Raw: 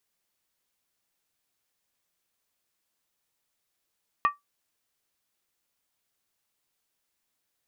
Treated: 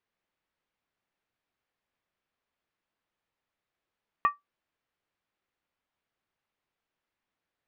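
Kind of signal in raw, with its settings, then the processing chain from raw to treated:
skin hit, lowest mode 1.16 kHz, decay 0.16 s, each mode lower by 8.5 dB, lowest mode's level -15 dB
low-pass 2.5 kHz 12 dB/octave

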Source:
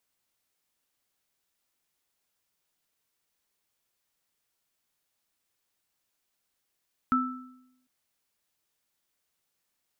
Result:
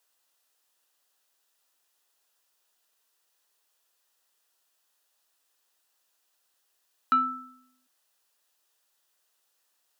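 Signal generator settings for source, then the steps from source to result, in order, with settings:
sine partials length 0.75 s, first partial 254 Hz, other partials 1.32 kHz, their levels 2.5 dB, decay 0.88 s, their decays 0.63 s, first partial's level -23 dB
high-pass 460 Hz 12 dB/octave; band-stop 2.2 kHz, Q 6; in parallel at -9.5 dB: sine folder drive 6 dB, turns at -15.5 dBFS

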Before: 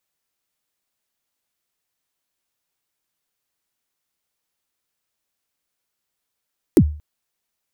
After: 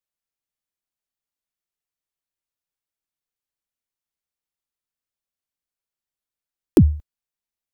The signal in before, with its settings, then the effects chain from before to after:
kick drum length 0.23 s, from 410 Hz, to 75 Hz, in 64 ms, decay 0.41 s, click on, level -4.5 dB
gate -33 dBFS, range -13 dB; bass shelf 91 Hz +9 dB

